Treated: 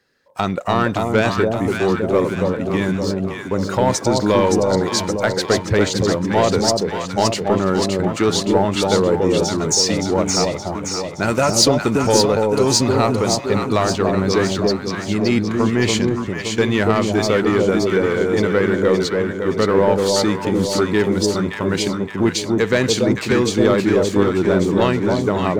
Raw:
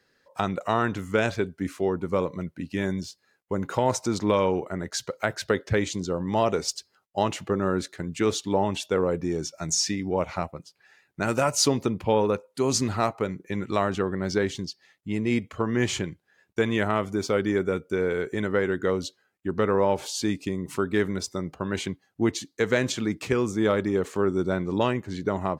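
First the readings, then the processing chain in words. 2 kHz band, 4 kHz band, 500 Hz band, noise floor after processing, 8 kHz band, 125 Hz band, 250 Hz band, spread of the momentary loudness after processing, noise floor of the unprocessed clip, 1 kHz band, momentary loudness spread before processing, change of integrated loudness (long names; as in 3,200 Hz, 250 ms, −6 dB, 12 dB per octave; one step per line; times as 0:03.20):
+8.0 dB, +11.0 dB, +9.0 dB, −28 dBFS, +9.0 dB, +9.5 dB, +9.5 dB, 6 LU, −71 dBFS, +8.0 dB, 8 LU, +9.0 dB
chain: leveller curve on the samples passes 1
delay that swaps between a low-pass and a high-pass 285 ms, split 890 Hz, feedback 73%, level −2 dB
dynamic equaliser 4,400 Hz, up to +5 dB, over −45 dBFS, Q 3
level +3.5 dB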